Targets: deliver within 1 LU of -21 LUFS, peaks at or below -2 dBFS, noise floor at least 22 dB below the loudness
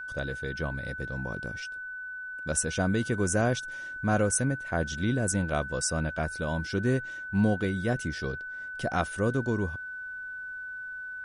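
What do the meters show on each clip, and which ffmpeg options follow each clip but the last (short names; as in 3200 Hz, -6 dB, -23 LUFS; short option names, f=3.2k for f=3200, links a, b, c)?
steady tone 1500 Hz; tone level -36 dBFS; loudness -30.0 LUFS; peak -12.5 dBFS; loudness target -21.0 LUFS
-> -af "bandreject=f=1.5k:w=30"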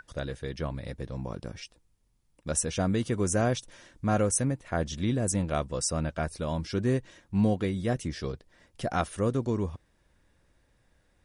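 steady tone none; loudness -30.0 LUFS; peak -13.0 dBFS; loudness target -21.0 LUFS
-> -af "volume=9dB"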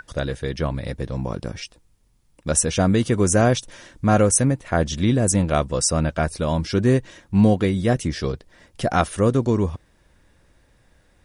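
loudness -21.0 LUFS; peak -4.0 dBFS; noise floor -60 dBFS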